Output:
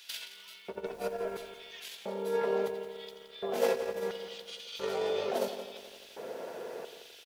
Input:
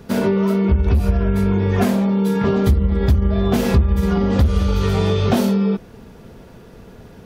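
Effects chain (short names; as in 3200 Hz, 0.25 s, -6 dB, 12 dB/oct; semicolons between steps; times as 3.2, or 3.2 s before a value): notch 1200 Hz, Q 14; de-hum 46.33 Hz, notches 7; negative-ratio compressor -24 dBFS, ratio -1; LFO high-pass square 0.73 Hz 520–3200 Hz; 0.84–1.48 added noise pink -55 dBFS; echo 0.172 s -16 dB; lo-fi delay 86 ms, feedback 80%, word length 8-bit, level -14.5 dB; gain -6.5 dB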